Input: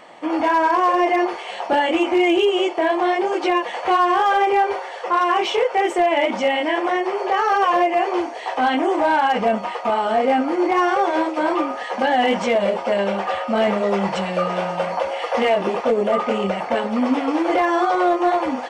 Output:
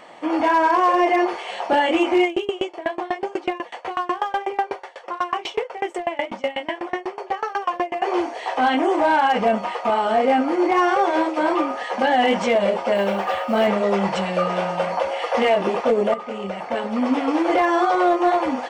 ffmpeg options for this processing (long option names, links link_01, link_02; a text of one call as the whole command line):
ffmpeg -i in.wav -filter_complex "[0:a]asettb=1/sr,asplit=3[link_01][link_02][link_03];[link_01]atrim=end=2.244[link_04];[link_02]atrim=start=2.24:end=8.02,asetpts=PTS-STARTPTS,afade=type=in:duration=0.004:curve=qsin,afade=type=out:start_time=5.776:duration=0.004:curve=qsin,aeval=exprs='val(0)*pow(10,-25*if(lt(mod(8.1*n/s,1),2*abs(8.1)/1000),1-mod(8.1*n/s,1)/(2*abs(8.1)/1000),(mod(8.1*n/s,1)-2*abs(8.1)/1000)/(1-2*abs(8.1)/1000))/20)':channel_layout=same[link_05];[link_03]atrim=start=8.016[link_06];[link_04][link_05]acrossfade=duration=0.004:curve1=hsin:curve2=qsin[link_07];[link_07][link_06]acrossfade=duration=0.004:curve1=qsin:curve2=hsin,asettb=1/sr,asplit=3[link_08][link_09][link_10];[link_08]atrim=end=12.954[link_11];[link_09]atrim=start=12.95:end=13.67,asetpts=PTS-STARTPTS,afade=type=in:duration=0.004:curve=qsin,afade=type=out:start_time=0.716:duration=0.004:curve=qsin,acrusher=bits=9:mode=log:mix=0:aa=0.000001[link_12];[link_10]atrim=start=13.666[link_13];[link_11][link_12]acrossfade=duration=0.004:curve1=hsin:curve2=qsin[link_14];[link_14][link_13]acrossfade=duration=0.004:curve1=qsin:curve2=hsin,asplit=2[link_15][link_16];[link_15]atrim=end=16.14,asetpts=PTS-STARTPTS,afade=type=out:start_time=16.136:duration=0.004:curve=hsin:silence=0.237137[link_17];[link_16]atrim=start=16.14,asetpts=PTS-STARTPTS,afade=type=in:duration=1.15:silence=0.237137[link_18];[link_17][link_18]concat=n=2:v=0:a=1" out.wav